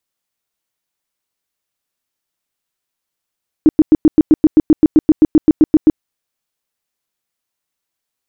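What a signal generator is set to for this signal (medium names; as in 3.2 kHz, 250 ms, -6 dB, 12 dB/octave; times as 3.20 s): tone bursts 310 Hz, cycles 9, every 0.13 s, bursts 18, -3 dBFS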